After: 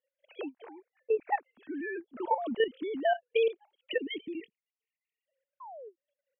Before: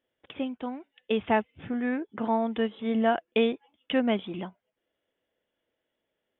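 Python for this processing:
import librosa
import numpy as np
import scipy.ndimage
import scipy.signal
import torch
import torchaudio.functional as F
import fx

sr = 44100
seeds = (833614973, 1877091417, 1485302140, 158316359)

y = fx.sine_speech(x, sr)
y = fx.steep_lowpass(y, sr, hz=2500.0, slope=96, at=(0.65, 1.36), fade=0.02)
y = fx.spec_erase(y, sr, start_s=3.99, length_s=1.28, low_hz=460.0, high_hz=1800.0)
y = fx.level_steps(y, sr, step_db=12)
y = fx.low_shelf(y, sr, hz=300.0, db=6.5, at=(2.0, 2.95))
y = fx.spec_paint(y, sr, seeds[0], shape='fall', start_s=5.6, length_s=0.36, low_hz=320.0, high_hz=1100.0, level_db=-45.0)
y = fx.end_taper(y, sr, db_per_s=540.0)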